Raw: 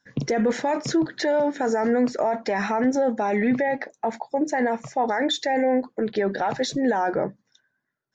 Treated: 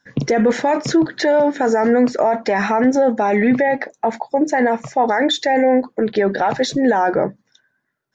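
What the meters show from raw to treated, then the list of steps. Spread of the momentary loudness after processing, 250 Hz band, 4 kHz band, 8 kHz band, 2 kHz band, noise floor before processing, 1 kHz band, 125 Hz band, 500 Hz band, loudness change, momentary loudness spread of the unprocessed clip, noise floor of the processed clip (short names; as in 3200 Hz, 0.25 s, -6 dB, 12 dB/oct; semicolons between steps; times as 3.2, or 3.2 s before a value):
5 LU, +6.5 dB, +5.5 dB, n/a, +7.0 dB, -77 dBFS, +7.0 dB, +6.0 dB, +7.0 dB, +7.0 dB, 5 LU, -71 dBFS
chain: tone controls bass -1 dB, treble -3 dB; gain +7 dB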